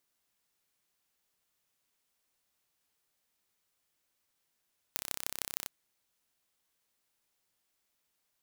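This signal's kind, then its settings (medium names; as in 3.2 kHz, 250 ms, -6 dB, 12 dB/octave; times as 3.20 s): pulse train 32.8 per s, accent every 5, -4.5 dBFS 0.71 s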